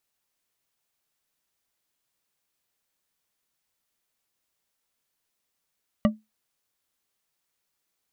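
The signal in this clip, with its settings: glass hit bar, lowest mode 216 Hz, decay 0.20 s, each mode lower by 5 dB, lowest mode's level -13 dB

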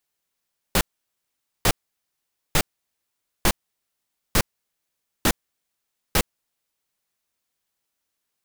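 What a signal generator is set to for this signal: noise bursts pink, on 0.06 s, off 0.84 s, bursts 7, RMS -17.5 dBFS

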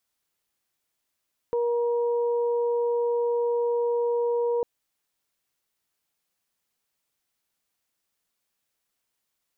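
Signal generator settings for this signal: steady additive tone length 3.10 s, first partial 475 Hz, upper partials -12 dB, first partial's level -22 dB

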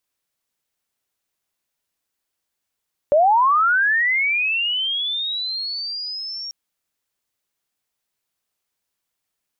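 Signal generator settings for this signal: sweep linear 560 Hz -> 5.6 kHz -11 dBFS -> -28 dBFS 3.39 s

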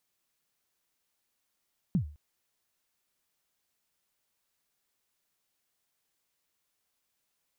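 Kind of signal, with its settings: kick drum length 0.21 s, from 210 Hz, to 74 Hz, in 98 ms, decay 0.39 s, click off, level -20 dB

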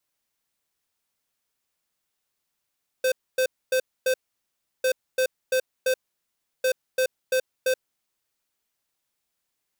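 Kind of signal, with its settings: beep pattern square 516 Hz, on 0.08 s, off 0.26 s, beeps 4, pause 0.70 s, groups 3, -21.5 dBFS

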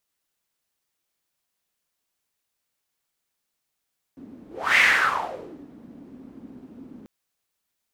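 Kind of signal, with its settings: whoosh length 2.89 s, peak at 0.61 s, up 0.32 s, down 0.96 s, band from 260 Hz, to 2.1 kHz, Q 5.6, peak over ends 27.5 dB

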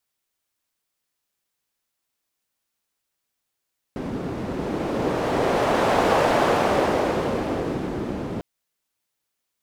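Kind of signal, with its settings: wind-like swept noise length 4.45 s, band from 270 Hz, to 650 Hz, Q 1.1, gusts 1, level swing 10 dB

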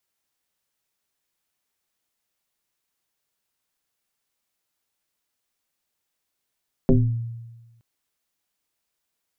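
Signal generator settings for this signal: FM tone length 0.92 s, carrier 116 Hz, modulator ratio 1.17, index 2.8, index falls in 0.53 s exponential, decay 1.23 s, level -10.5 dB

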